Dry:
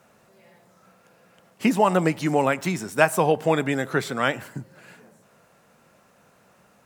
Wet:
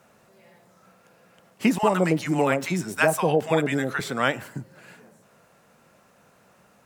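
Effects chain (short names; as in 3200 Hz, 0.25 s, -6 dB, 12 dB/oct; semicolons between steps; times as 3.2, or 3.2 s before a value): 1.78–4 bands offset in time highs, lows 50 ms, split 880 Hz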